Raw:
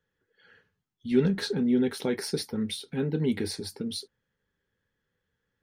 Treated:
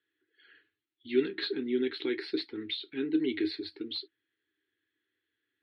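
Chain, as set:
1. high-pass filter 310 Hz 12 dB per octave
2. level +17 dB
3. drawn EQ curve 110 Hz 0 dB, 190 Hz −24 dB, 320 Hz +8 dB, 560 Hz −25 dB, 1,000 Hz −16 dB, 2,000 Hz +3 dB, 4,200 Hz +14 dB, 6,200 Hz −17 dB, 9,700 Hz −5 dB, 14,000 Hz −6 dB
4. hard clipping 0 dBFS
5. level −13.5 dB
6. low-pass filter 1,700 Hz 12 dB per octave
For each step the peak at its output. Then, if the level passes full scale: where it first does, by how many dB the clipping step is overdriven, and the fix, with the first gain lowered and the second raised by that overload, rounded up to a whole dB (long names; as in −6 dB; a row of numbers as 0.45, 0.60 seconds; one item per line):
−14.5, +2.5, +7.5, 0.0, −13.5, −15.0 dBFS
step 2, 7.5 dB
step 2 +9 dB, step 5 −5.5 dB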